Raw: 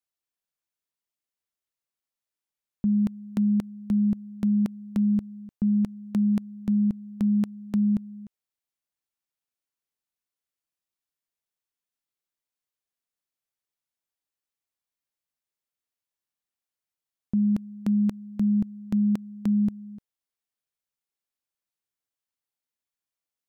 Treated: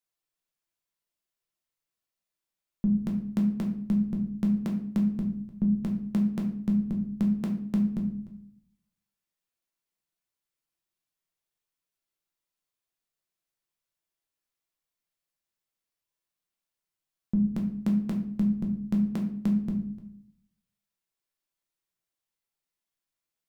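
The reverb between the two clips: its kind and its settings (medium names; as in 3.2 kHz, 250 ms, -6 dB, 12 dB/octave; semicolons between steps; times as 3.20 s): simulated room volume 84 m³, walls mixed, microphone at 0.75 m; trim -1 dB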